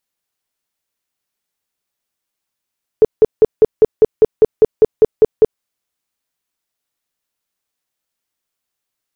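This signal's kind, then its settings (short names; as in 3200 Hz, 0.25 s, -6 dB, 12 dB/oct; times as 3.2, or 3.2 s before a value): tone bursts 437 Hz, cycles 12, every 0.20 s, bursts 13, -3 dBFS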